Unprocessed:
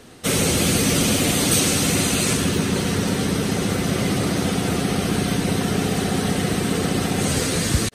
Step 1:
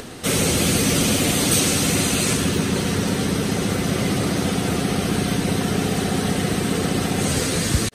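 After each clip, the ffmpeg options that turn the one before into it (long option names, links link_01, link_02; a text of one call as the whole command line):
ffmpeg -i in.wav -af "acompressor=mode=upward:threshold=-27dB:ratio=2.5" out.wav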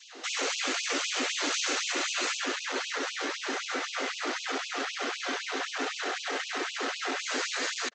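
ffmpeg -i in.wav -af "adynamicequalizer=threshold=0.00794:dfrequency=1500:dqfactor=1:tfrequency=1500:tqfactor=1:attack=5:release=100:ratio=0.375:range=4:mode=boostabove:tftype=bell,aresample=16000,volume=19dB,asoftclip=hard,volume=-19dB,aresample=44100,afftfilt=real='re*gte(b*sr/1024,220*pow(2500/220,0.5+0.5*sin(2*PI*3.9*pts/sr)))':imag='im*gte(b*sr/1024,220*pow(2500/220,0.5+0.5*sin(2*PI*3.9*pts/sr)))':win_size=1024:overlap=0.75,volume=-6dB" out.wav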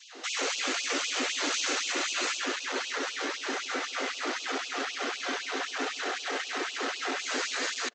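ffmpeg -i in.wav -filter_complex "[0:a]asplit=2[link_01][link_02];[link_02]adelay=166,lowpass=frequency=930:poles=1,volume=-20.5dB,asplit=2[link_03][link_04];[link_04]adelay=166,lowpass=frequency=930:poles=1,volume=0.48,asplit=2[link_05][link_06];[link_06]adelay=166,lowpass=frequency=930:poles=1,volume=0.48,asplit=2[link_07][link_08];[link_08]adelay=166,lowpass=frequency=930:poles=1,volume=0.48[link_09];[link_01][link_03][link_05][link_07][link_09]amix=inputs=5:normalize=0" out.wav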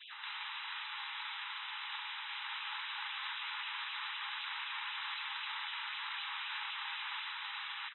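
ffmpeg -i in.wav -af "aecho=1:1:120:0.141,aeval=exprs='(mod(44.7*val(0)+1,2)-1)/44.7':channel_layout=same,afftfilt=real='re*between(b*sr/4096,800,4000)':imag='im*between(b*sr/4096,800,4000)':win_size=4096:overlap=0.75,volume=2dB" out.wav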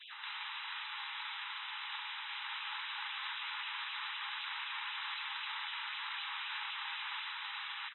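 ffmpeg -i in.wav -ar 48000 -c:a libopus -b:a 256k out.opus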